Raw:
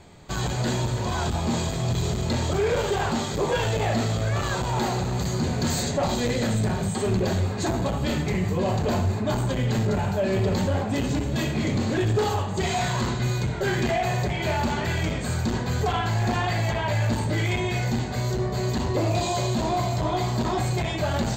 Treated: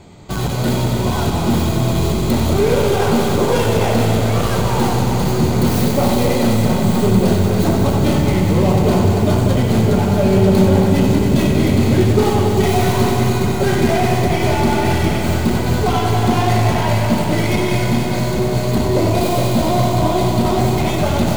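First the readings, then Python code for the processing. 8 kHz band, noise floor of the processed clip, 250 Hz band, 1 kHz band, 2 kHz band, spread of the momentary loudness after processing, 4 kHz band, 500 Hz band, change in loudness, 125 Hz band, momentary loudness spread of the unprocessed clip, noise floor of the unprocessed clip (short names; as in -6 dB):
+6.0 dB, -18 dBFS, +11.5 dB, +8.5 dB, +5.5 dB, 4 LU, +6.5 dB, +10.0 dB, +9.5 dB, +9.0 dB, 2 LU, -29 dBFS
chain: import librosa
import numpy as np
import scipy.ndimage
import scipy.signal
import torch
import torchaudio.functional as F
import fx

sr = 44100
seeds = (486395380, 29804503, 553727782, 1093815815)

y = fx.tracing_dist(x, sr, depth_ms=0.18)
y = fx.peak_eq(y, sr, hz=220.0, db=5.0, octaves=2.2)
y = fx.notch(y, sr, hz=1700.0, q=8.1)
y = fx.echo_heads(y, sr, ms=94, heads='all three', feedback_pct=45, wet_db=-9.5)
y = fx.echo_crushed(y, sr, ms=418, feedback_pct=80, bits=6, wet_db=-10.0)
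y = y * librosa.db_to_amplitude(4.5)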